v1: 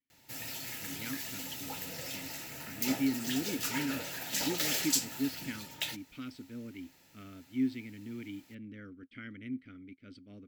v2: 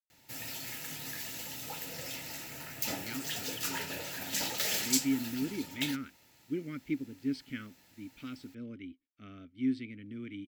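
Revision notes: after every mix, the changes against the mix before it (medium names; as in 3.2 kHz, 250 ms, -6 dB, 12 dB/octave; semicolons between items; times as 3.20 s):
speech: entry +2.05 s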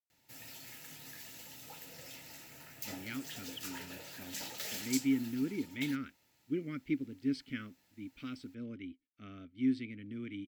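background -9.0 dB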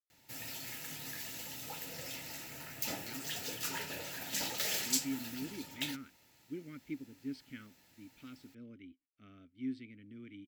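speech -8.0 dB; background +6.0 dB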